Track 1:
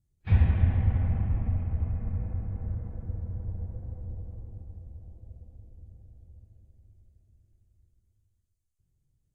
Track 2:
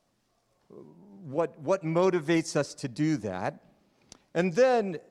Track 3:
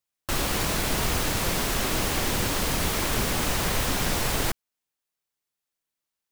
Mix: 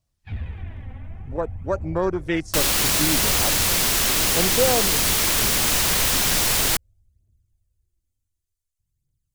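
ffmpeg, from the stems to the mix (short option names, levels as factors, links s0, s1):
-filter_complex "[0:a]aphaser=in_gain=1:out_gain=1:delay=3.9:decay=0.57:speed=0.55:type=triangular,asoftclip=type=tanh:threshold=0.188,volume=0.355[s0];[1:a]afwtdn=0.0282,volume=1.06[s1];[2:a]acrusher=bits=8:dc=4:mix=0:aa=0.000001,adelay=2250,volume=0.944[s2];[s0][s1][s2]amix=inputs=3:normalize=0,highshelf=f=2000:g=11"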